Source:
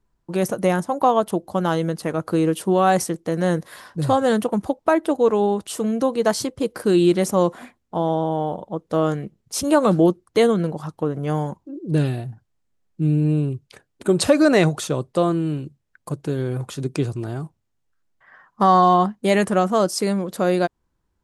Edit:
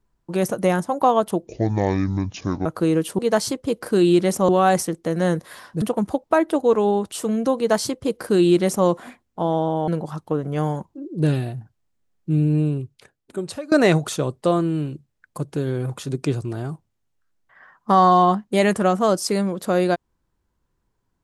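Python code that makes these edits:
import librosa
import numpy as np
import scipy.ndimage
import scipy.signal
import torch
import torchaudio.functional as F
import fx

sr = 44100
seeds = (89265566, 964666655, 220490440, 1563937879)

y = fx.edit(x, sr, fx.speed_span(start_s=1.47, length_s=0.7, speed=0.59),
    fx.cut(start_s=4.03, length_s=0.34),
    fx.duplicate(start_s=6.12, length_s=1.3, to_s=2.7),
    fx.cut(start_s=8.43, length_s=2.16),
    fx.fade_out_to(start_s=13.26, length_s=1.17, floor_db=-23.5), tone=tone)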